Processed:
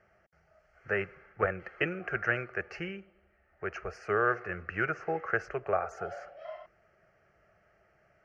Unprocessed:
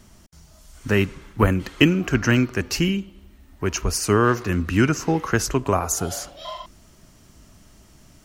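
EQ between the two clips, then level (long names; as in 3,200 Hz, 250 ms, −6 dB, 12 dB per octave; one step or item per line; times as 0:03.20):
resonant band-pass 1,100 Hz, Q 0.69
high-frequency loss of the air 230 metres
phaser with its sweep stopped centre 990 Hz, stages 6
−1.0 dB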